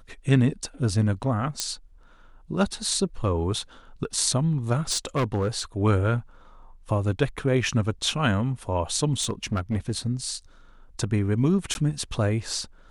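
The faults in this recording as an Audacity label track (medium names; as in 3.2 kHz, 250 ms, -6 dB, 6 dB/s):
1.600000	1.600000	pop -9 dBFS
4.890000	5.610000	clipped -19.5 dBFS
9.210000	9.910000	clipped -20.5 dBFS
11.740000	11.750000	dropout 11 ms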